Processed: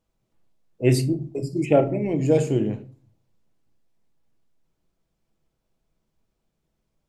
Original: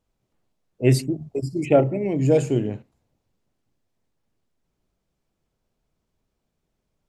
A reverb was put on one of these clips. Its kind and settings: simulated room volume 240 m³, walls furnished, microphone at 0.68 m; trim -1 dB

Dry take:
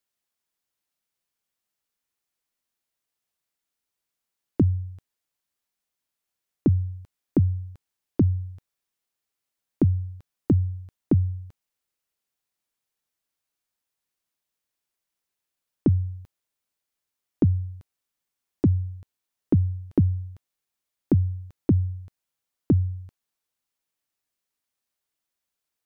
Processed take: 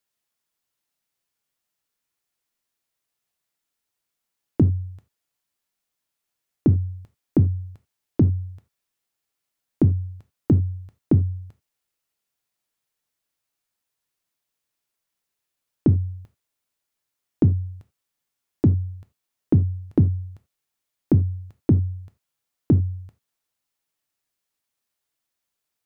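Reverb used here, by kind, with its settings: gated-style reverb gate 110 ms falling, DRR 9 dB; trim +2 dB

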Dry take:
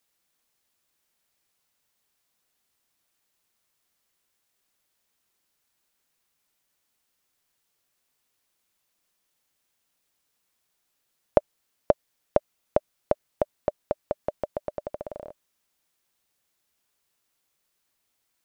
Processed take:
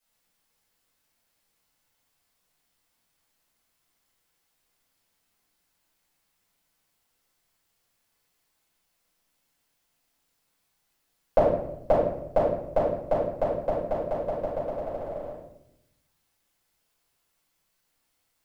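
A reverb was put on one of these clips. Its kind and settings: simulated room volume 210 m³, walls mixed, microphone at 5.2 m; trim -11 dB

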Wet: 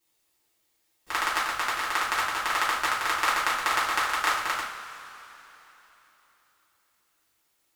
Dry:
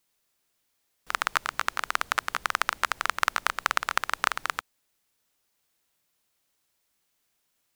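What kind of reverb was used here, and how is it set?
two-slope reverb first 0.42 s, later 3.6 s, from -18 dB, DRR -8.5 dB; trim -6 dB

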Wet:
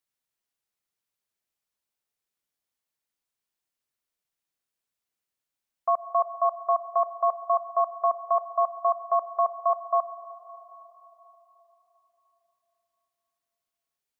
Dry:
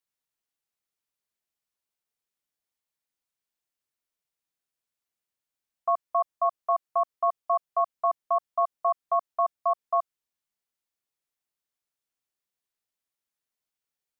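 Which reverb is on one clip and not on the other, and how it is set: algorithmic reverb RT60 4 s, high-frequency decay 0.75×, pre-delay 60 ms, DRR 13 dB; trim +1 dB

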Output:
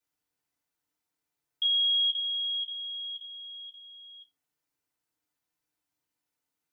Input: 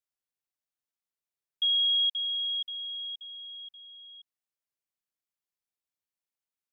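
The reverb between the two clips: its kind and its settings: FDN reverb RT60 0.31 s, low-frequency decay 1.3×, high-frequency decay 0.55×, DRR -8 dB

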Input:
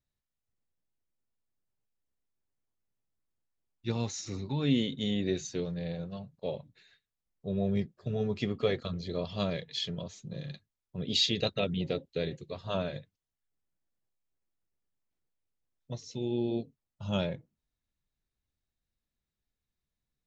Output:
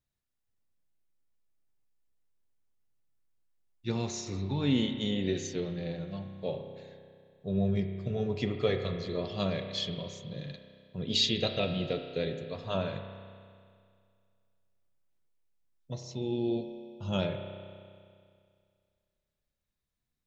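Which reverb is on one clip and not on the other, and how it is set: spring tank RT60 2.2 s, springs 31 ms, chirp 50 ms, DRR 5.5 dB

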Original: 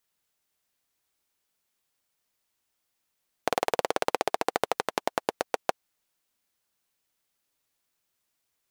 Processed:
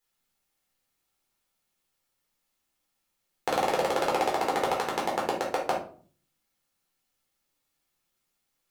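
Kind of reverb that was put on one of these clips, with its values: simulated room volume 360 m³, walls furnished, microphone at 4.1 m; trim -5.5 dB

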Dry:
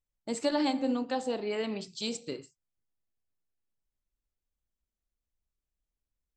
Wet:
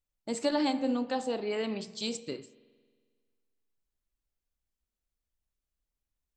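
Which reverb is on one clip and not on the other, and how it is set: spring tank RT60 1.7 s, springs 45 ms, chirp 45 ms, DRR 17.5 dB

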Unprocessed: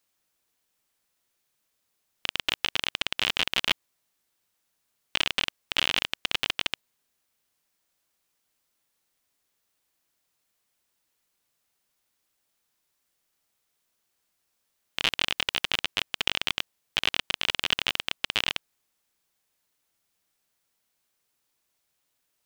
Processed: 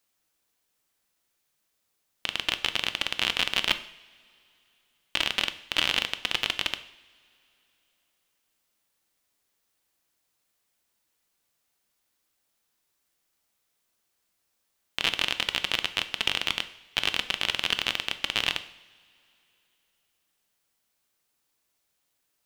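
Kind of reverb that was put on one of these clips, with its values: two-slope reverb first 0.65 s, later 3.2 s, from -21 dB, DRR 10 dB

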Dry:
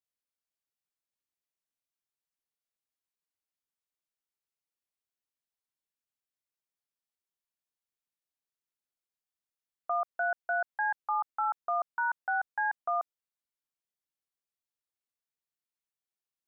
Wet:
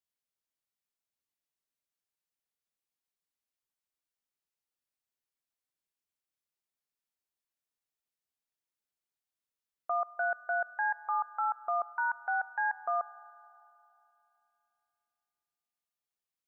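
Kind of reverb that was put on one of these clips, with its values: spring tank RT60 3 s, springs 35/57 ms, chirp 20 ms, DRR 19 dB; trim -1 dB

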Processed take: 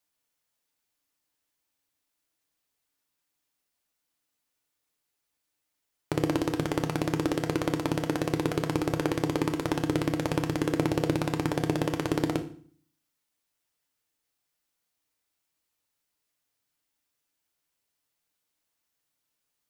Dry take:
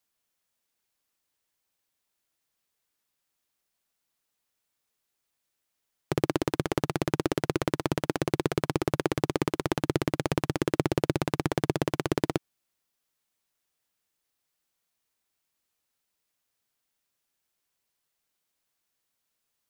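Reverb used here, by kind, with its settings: FDN reverb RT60 0.48 s, low-frequency decay 1.4×, high-frequency decay 0.95×, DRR 5.5 dB; trim -1.5 dB

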